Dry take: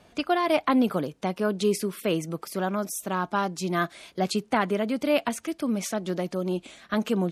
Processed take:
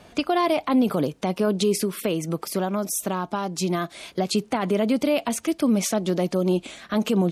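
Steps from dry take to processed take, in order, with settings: 1.72–4.33 s: compression, threshold -27 dBFS, peak gain reduction 7.5 dB; peak limiter -19.5 dBFS, peak gain reduction 9 dB; dynamic bell 1.6 kHz, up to -6 dB, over -47 dBFS, Q 1.7; trim +7 dB

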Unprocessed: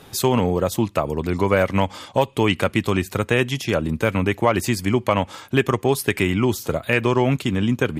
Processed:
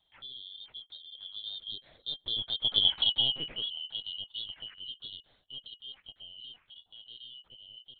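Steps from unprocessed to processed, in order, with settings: four frequency bands reordered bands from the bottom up 3412; Doppler pass-by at 2.95 s, 15 m/s, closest 2.4 m; LPC vocoder at 8 kHz pitch kept; trim -2 dB

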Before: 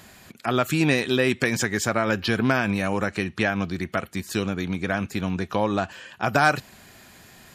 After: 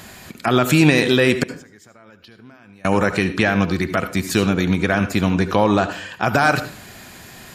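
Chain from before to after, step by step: peak limiter -12.5 dBFS, peak gain reduction 7.5 dB; 1.43–2.85 s: inverted gate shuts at -22 dBFS, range -30 dB; reverberation RT60 0.45 s, pre-delay 68 ms, DRR 10.5 dB; trim +8.5 dB

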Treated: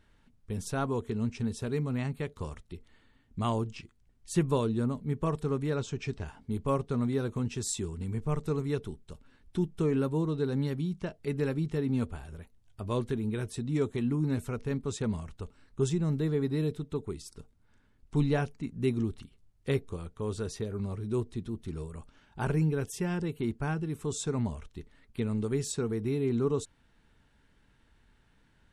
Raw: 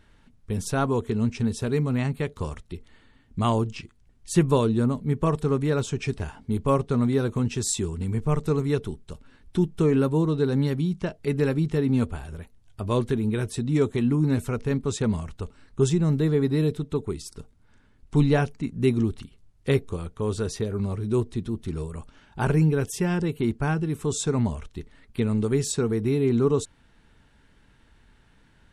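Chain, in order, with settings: 5.75–6.27 s: low-pass 7.5 kHz 24 dB/octave; trim -7 dB

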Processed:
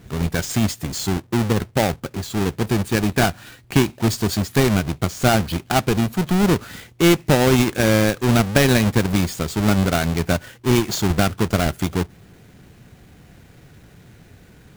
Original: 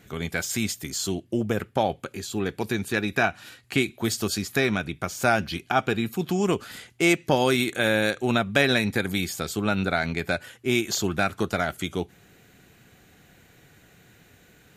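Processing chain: square wave that keeps the level; bass shelf 200 Hz +8.5 dB; trim -1 dB

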